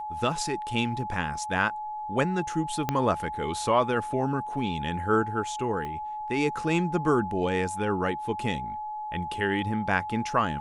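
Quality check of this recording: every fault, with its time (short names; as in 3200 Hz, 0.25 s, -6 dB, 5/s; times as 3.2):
tone 850 Hz -32 dBFS
2.89 pop -11 dBFS
5.85 pop -23 dBFS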